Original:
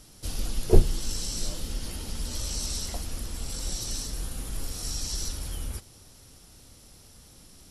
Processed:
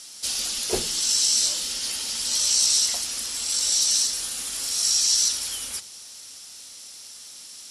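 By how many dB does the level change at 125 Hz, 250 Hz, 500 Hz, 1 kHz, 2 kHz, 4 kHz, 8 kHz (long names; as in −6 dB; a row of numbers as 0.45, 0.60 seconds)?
below −15 dB, −7.0 dB, −5.0 dB, +2.5 dB, +9.0 dB, +14.5 dB, +14.5 dB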